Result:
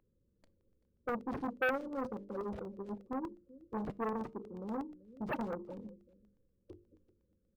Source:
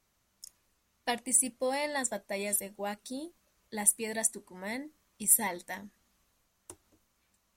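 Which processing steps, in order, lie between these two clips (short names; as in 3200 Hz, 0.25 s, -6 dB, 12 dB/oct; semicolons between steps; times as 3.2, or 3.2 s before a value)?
Wiener smoothing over 15 samples; brick-wall FIR band-stop 560–14000 Hz; high shelf 9200 Hz +5.5 dB; notches 50/100/150/200/250/300/350/400/450 Hz; resonator 110 Hz, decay 0.41 s, harmonics all, mix 30%; echo 0.386 s -20 dB; soft clip -39.5 dBFS, distortion -10 dB; band shelf 1500 Hz +14.5 dB 2.5 oct; crackling interface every 0.12 s, samples 64, zero, from 0.61; decimation joined by straight lines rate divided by 3×; gain +6.5 dB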